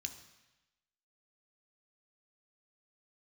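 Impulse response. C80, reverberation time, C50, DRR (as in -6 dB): 12.5 dB, 1.0 s, 10.5 dB, 5.5 dB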